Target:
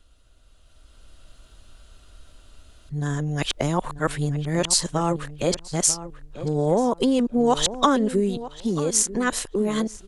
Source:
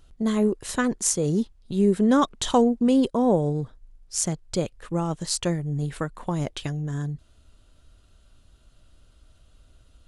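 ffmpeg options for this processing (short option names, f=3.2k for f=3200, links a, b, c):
-filter_complex "[0:a]areverse,acompressor=threshold=-22dB:ratio=6,equalizer=f=120:w=0.39:g=-7,asplit=2[a][b];[b]adelay=940,lowpass=f=2.3k:p=1,volume=-13dB,asplit=2[c][d];[d]adelay=940,lowpass=f=2.3k:p=1,volume=0.19[e];[a][c][e]amix=inputs=3:normalize=0,dynaudnorm=f=340:g=5:m=9.5dB"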